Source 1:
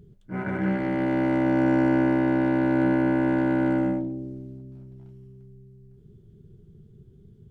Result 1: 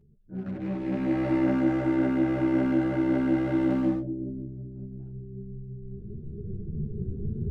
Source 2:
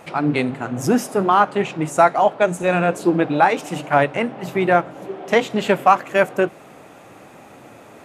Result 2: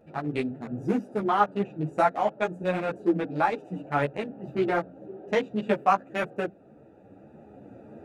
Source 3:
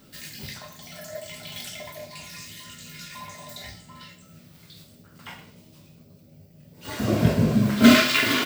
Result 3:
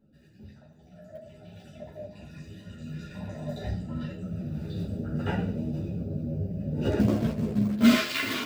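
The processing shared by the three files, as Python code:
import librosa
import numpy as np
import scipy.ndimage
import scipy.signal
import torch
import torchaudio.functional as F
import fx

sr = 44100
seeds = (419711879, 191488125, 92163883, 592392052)

y = fx.wiener(x, sr, points=41)
y = fx.recorder_agc(y, sr, target_db=-8.0, rise_db_per_s=6.1, max_gain_db=30)
y = fx.ensemble(y, sr)
y = F.gain(torch.from_numpy(y), -5.0).numpy()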